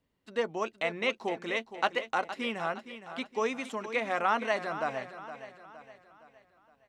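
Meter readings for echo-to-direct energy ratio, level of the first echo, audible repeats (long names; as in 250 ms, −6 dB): −11.0 dB, −12.0 dB, 4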